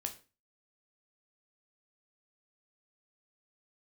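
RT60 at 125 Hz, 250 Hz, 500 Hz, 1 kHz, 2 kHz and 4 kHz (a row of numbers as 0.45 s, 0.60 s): 0.40 s, 0.40 s, 0.35 s, 0.30 s, 0.30 s, 0.30 s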